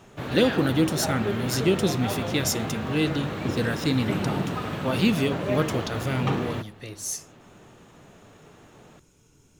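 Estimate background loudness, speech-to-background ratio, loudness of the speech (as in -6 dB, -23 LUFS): -30.0 LUFS, 3.0 dB, -27.0 LUFS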